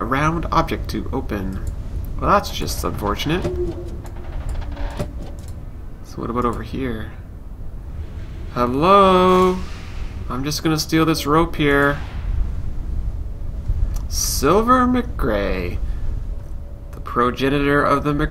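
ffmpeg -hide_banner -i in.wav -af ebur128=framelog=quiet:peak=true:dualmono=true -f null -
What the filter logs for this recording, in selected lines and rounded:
Integrated loudness:
  I:         -16.8 LUFS
  Threshold: -27.8 LUFS
Loudness range:
  LRA:        10.5 LU
  Threshold: -37.9 LUFS
  LRA low:   -25.0 LUFS
  LRA high:  -14.4 LUFS
True peak:
  Peak:       -1.1 dBFS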